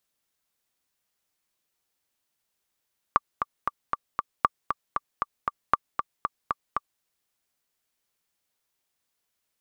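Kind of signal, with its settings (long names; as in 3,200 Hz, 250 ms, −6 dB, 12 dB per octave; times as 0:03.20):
click track 233 BPM, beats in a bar 5, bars 3, 1,170 Hz, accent 7 dB −5 dBFS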